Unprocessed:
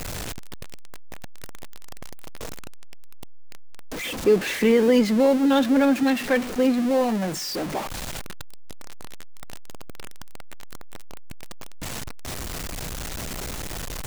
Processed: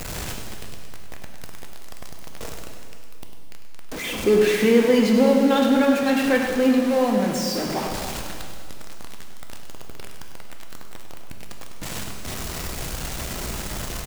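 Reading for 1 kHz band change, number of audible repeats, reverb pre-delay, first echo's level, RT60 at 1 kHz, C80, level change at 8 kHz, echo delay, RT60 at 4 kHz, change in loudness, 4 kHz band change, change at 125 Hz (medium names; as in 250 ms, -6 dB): +2.5 dB, 1, 4 ms, -9.5 dB, 2.3 s, 3.5 dB, +2.5 dB, 100 ms, 2.1 s, +2.0 dB, +2.5 dB, +2.5 dB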